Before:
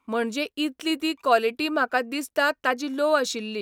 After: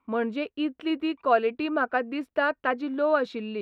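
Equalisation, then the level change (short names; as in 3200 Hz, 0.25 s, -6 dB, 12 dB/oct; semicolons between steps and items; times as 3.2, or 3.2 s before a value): air absorption 460 m; 0.0 dB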